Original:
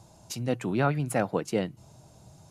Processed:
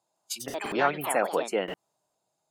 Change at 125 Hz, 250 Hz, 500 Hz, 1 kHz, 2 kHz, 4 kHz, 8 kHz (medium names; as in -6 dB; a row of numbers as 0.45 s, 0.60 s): -15.5 dB, -6.0 dB, +1.5 dB, +4.0 dB, +4.5 dB, +4.5 dB, +4.0 dB